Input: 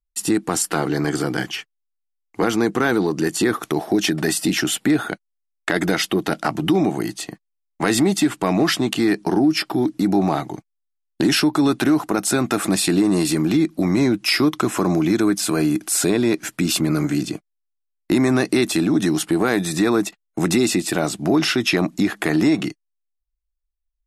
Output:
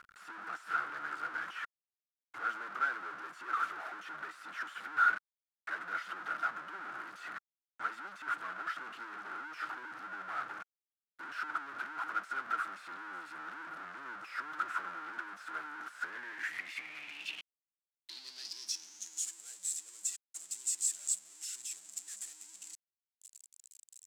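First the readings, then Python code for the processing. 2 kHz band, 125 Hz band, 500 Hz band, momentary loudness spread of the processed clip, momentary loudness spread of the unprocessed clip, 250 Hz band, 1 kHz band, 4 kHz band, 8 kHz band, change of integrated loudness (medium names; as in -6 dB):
-11.0 dB, under -40 dB, -35.0 dB, 12 LU, 7 LU, under -40 dB, -10.5 dB, -22.5 dB, -13.0 dB, -19.0 dB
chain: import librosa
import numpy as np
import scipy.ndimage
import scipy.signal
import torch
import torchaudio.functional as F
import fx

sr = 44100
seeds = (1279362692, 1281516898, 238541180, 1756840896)

y = np.sign(x) * np.sqrt(np.mean(np.square(x)))
y = fx.filter_sweep_bandpass(y, sr, from_hz=1400.0, to_hz=7600.0, start_s=15.88, end_s=19.36, q=7.4)
y = fx.upward_expand(y, sr, threshold_db=-46.0, expansion=1.5)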